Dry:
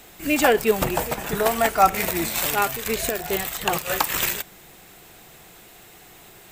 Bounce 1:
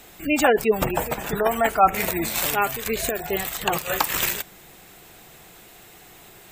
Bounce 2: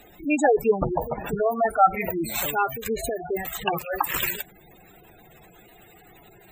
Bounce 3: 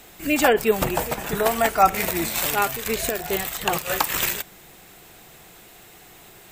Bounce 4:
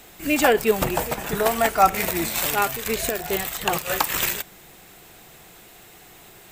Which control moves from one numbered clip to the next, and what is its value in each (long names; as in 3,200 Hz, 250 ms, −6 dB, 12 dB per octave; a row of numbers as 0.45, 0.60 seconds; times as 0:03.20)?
gate on every frequency bin, under each frame's peak: −25, −10, −40, −50 decibels